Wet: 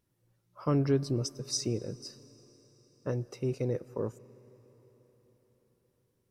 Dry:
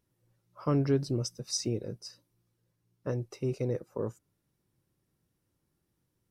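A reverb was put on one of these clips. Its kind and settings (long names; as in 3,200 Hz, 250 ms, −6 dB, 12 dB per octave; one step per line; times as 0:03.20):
comb and all-pass reverb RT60 4.9 s, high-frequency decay 1×, pre-delay 60 ms, DRR 19.5 dB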